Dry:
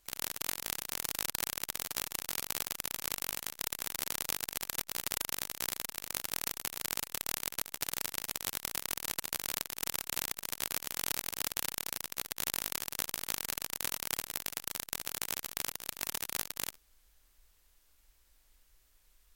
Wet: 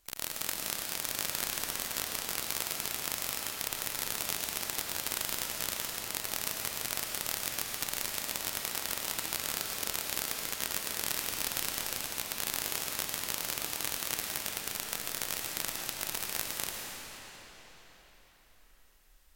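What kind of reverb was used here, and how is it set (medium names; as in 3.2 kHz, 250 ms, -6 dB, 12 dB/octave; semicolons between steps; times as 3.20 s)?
algorithmic reverb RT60 4.7 s, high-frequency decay 0.85×, pre-delay 65 ms, DRR -0.5 dB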